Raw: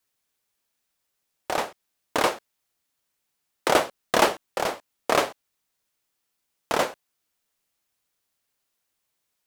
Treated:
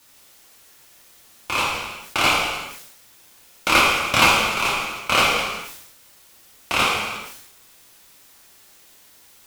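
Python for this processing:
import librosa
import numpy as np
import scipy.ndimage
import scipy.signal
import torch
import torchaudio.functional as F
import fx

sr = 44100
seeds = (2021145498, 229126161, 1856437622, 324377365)

p1 = fx.quant_dither(x, sr, seeds[0], bits=8, dither='triangular')
p2 = x + (p1 * librosa.db_to_amplitude(-5.0))
p3 = p2 * np.sin(2.0 * np.pi * 1800.0 * np.arange(len(p2)) / sr)
p4 = fx.rev_gated(p3, sr, seeds[1], gate_ms=430, shape='falling', drr_db=-4.5)
p5 = fx.sustainer(p4, sr, db_per_s=55.0)
y = p5 * librosa.db_to_amplitude(-1.0)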